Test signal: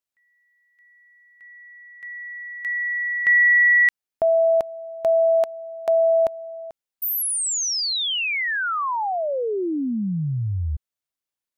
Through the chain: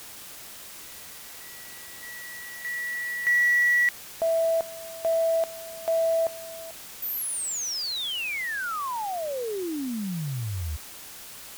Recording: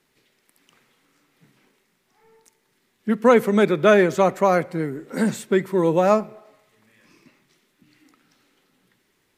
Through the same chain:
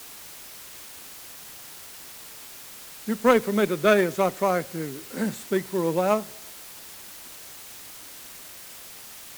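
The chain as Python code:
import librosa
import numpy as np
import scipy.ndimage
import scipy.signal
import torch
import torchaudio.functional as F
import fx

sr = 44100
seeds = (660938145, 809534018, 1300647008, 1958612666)

y = fx.quant_dither(x, sr, seeds[0], bits=6, dither='triangular')
y = fx.cheby_harmonics(y, sr, harmonics=(3,), levels_db=(-16,), full_scale_db=-2.0)
y = F.gain(torch.from_numpy(y), -1.0).numpy()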